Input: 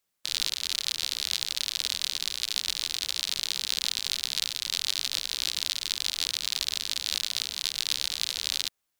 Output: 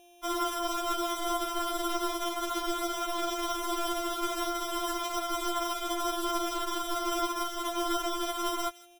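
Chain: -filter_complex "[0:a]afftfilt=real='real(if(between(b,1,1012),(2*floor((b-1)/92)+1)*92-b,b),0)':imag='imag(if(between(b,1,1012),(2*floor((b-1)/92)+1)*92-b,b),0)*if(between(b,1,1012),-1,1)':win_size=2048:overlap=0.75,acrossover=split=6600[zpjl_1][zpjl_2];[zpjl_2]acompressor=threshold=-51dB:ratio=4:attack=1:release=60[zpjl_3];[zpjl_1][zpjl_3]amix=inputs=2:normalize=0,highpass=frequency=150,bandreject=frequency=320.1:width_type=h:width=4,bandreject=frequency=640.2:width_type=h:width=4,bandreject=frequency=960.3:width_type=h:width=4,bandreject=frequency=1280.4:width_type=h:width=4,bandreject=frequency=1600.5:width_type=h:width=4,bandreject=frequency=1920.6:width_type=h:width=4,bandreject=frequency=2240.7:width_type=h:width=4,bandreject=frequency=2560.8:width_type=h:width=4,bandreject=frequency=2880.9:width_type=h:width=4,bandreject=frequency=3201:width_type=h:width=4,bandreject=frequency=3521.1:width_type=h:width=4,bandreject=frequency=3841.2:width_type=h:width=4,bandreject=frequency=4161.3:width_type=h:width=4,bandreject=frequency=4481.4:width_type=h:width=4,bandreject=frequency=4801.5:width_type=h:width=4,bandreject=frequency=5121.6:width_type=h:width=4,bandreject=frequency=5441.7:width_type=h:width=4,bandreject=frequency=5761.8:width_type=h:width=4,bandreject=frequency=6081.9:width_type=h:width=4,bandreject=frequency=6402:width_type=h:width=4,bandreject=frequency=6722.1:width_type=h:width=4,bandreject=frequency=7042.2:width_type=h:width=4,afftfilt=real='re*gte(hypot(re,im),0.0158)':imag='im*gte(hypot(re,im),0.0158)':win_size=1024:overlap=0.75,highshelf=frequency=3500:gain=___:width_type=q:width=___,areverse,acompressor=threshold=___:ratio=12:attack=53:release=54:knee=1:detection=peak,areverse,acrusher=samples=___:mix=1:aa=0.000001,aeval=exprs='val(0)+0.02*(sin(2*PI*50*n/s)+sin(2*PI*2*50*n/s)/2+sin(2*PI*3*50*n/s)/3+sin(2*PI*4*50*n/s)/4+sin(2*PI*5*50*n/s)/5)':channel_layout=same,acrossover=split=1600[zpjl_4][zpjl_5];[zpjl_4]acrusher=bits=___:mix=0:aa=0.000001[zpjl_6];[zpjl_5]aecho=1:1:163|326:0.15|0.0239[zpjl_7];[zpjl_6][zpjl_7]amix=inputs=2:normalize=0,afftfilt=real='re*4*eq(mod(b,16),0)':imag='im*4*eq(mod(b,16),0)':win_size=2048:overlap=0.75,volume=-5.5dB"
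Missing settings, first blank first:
9, 3, -30dB, 10, 6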